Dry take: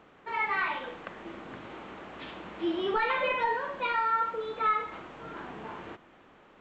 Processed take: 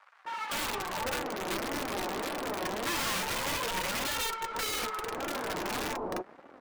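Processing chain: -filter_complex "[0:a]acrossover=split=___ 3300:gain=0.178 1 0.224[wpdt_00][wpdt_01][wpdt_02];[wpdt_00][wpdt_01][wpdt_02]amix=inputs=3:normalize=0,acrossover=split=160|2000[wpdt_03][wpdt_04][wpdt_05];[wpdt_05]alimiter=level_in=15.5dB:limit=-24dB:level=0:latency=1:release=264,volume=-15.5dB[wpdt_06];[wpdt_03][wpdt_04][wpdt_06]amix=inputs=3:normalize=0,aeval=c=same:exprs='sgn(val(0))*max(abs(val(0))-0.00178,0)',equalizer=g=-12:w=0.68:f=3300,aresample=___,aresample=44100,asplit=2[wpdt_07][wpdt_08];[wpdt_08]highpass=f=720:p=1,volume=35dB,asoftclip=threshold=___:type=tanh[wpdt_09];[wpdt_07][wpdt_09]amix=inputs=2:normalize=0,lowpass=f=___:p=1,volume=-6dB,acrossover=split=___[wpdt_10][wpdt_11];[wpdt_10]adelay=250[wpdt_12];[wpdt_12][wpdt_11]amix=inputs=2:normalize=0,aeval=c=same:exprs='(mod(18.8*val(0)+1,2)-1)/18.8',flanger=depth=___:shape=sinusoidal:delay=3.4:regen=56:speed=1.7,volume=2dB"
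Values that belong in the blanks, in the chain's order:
170, 32000, -19.5dB, 1000, 1000, 2.1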